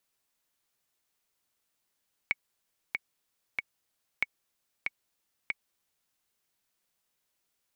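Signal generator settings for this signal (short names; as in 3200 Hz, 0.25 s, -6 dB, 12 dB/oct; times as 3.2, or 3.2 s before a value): metronome 94 bpm, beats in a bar 3, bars 2, 2230 Hz, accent 4 dB -13 dBFS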